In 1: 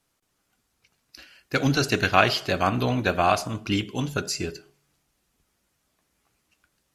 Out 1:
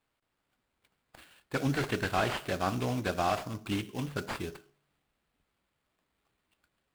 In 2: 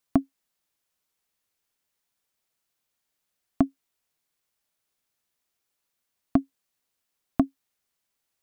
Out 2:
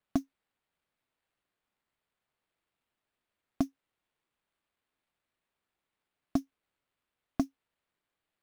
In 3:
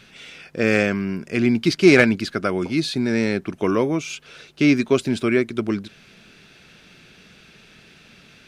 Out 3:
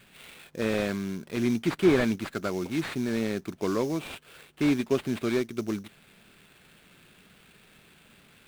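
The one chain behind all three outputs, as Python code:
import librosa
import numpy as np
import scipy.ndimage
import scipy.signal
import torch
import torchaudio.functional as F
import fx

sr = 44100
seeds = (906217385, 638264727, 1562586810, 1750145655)

y = fx.sample_hold(x, sr, seeds[0], rate_hz=6000.0, jitter_pct=20)
y = fx.slew_limit(y, sr, full_power_hz=210.0)
y = F.gain(torch.from_numpy(y), -7.5).numpy()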